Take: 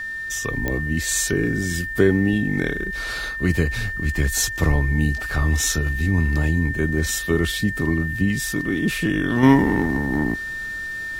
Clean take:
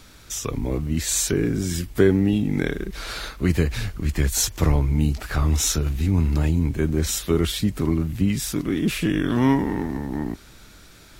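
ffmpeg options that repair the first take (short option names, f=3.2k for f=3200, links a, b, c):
-af "adeclick=t=4,bandreject=f=1.8k:w=30,asetnsamples=n=441:p=0,asendcmd='9.43 volume volume -5dB',volume=0dB"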